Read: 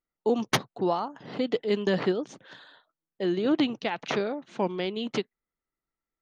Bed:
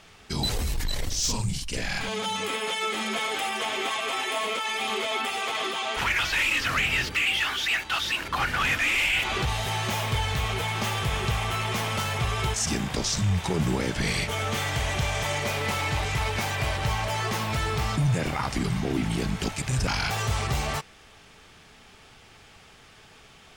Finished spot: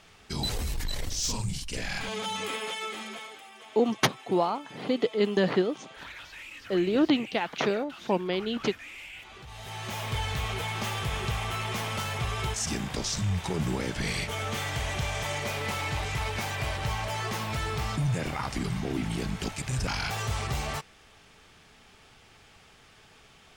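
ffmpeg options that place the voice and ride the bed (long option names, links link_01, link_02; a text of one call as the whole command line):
ffmpeg -i stem1.wav -i stem2.wav -filter_complex "[0:a]adelay=3500,volume=1dB[link_01];[1:a]volume=12.5dB,afade=type=out:start_time=2.51:duration=0.9:silence=0.149624,afade=type=in:start_time=9.46:duration=0.75:silence=0.158489[link_02];[link_01][link_02]amix=inputs=2:normalize=0" out.wav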